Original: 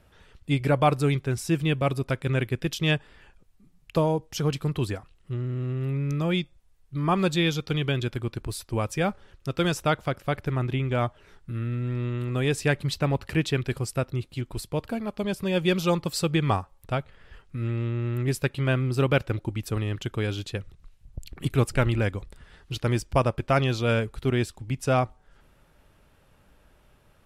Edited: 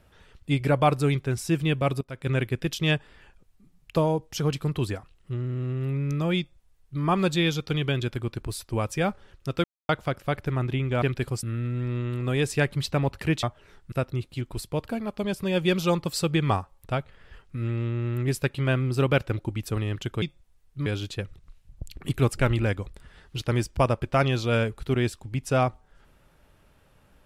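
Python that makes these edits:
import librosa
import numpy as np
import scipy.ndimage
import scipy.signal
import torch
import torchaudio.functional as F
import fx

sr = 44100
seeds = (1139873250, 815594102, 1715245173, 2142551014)

y = fx.edit(x, sr, fx.fade_in_from(start_s=2.01, length_s=0.27, curve='qua', floor_db=-17.0),
    fx.duplicate(start_s=6.38, length_s=0.64, to_s=20.22),
    fx.silence(start_s=9.64, length_s=0.25),
    fx.swap(start_s=11.02, length_s=0.49, other_s=13.51, other_length_s=0.41), tone=tone)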